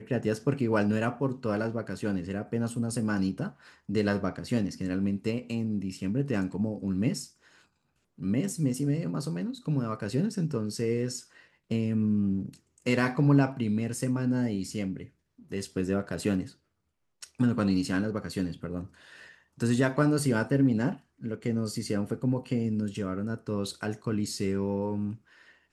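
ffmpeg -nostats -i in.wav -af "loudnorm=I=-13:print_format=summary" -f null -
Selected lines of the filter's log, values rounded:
Input Integrated:    -30.0 LUFS
Input True Peak:     -11.0 dBTP
Input LRA:             3.9 LU
Input Threshold:     -40.4 LUFS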